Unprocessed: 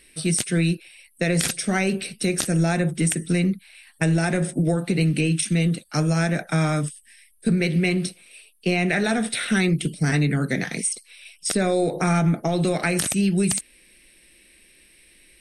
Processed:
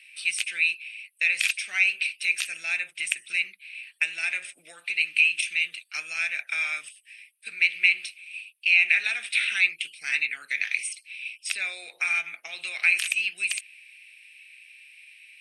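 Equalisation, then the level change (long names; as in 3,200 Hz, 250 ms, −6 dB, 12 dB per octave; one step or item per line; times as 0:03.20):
high-pass with resonance 2,500 Hz, resonance Q 7.4
high-shelf EQ 3,700 Hz −8.5 dB
−2.0 dB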